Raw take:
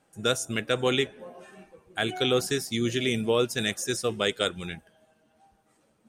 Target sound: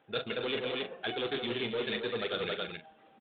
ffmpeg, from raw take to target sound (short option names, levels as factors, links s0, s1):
-filter_complex "[0:a]aresample=8000,asoftclip=type=tanh:threshold=0.0531,aresample=44100,atempo=1.9,equalizer=f=450:w=4.7:g=4,aecho=1:1:172|274.1:0.316|0.398,acontrast=34,aemphasis=mode=production:type=bsi,asplit=2[s0][s1];[s1]adelay=42,volume=0.282[s2];[s0][s2]amix=inputs=2:normalize=0,areverse,acompressor=threshold=0.0282:ratio=6,areverse"